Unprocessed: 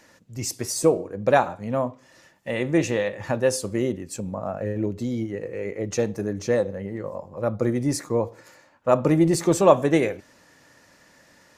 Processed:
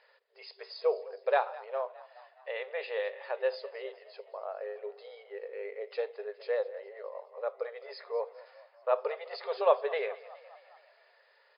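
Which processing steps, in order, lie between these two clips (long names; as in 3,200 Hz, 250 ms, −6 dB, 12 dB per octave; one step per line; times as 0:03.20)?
brick-wall band-pass 390–5,100 Hz
echo with shifted repeats 208 ms, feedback 60%, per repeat +37 Hz, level −19 dB
level −8.5 dB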